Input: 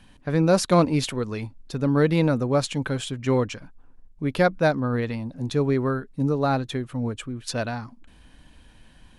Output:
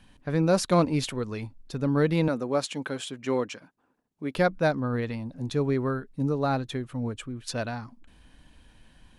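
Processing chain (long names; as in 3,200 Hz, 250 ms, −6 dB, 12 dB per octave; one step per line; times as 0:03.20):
0:02.28–0:04.35: high-pass filter 230 Hz 12 dB per octave
level −3.5 dB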